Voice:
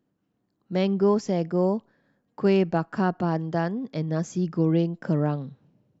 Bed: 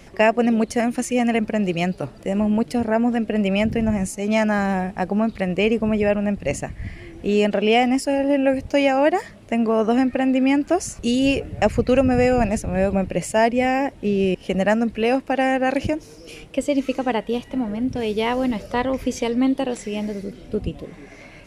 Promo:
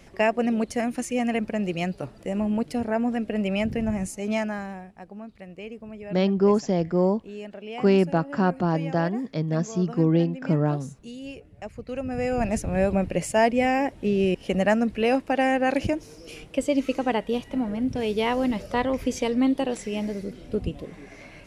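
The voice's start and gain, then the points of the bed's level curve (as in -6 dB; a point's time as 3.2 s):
5.40 s, +1.5 dB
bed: 4.31 s -5.5 dB
4.92 s -19.5 dB
11.75 s -19.5 dB
12.58 s -2.5 dB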